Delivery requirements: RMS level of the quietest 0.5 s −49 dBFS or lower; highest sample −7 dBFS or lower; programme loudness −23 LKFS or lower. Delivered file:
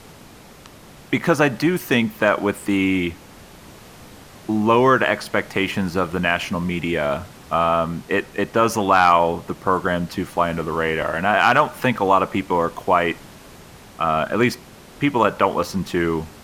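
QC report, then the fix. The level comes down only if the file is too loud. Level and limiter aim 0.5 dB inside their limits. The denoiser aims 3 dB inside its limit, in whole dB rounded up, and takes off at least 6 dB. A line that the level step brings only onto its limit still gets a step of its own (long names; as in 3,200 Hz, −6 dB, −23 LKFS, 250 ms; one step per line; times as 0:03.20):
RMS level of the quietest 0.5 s −44 dBFS: out of spec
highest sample −2.5 dBFS: out of spec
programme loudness −20.0 LKFS: out of spec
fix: broadband denoise 6 dB, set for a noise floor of −44 dBFS
level −3.5 dB
brickwall limiter −7.5 dBFS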